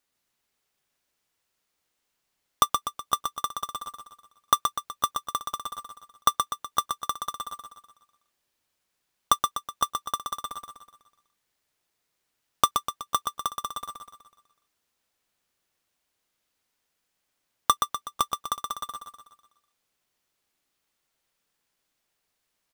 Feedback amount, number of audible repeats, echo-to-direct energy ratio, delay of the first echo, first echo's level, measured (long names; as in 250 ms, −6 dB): 49%, 5, −4.5 dB, 124 ms, −5.5 dB